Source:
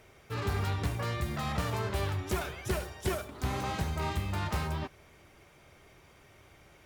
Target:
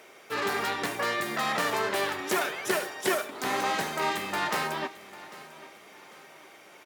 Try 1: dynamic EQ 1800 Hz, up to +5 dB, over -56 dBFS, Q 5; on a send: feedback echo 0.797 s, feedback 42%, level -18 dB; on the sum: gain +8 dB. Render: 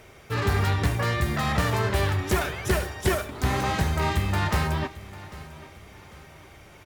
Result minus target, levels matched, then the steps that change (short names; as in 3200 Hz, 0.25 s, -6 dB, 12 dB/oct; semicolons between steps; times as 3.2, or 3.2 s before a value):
250 Hz band +3.0 dB
add after dynamic EQ: Bessel high-pass 340 Hz, order 4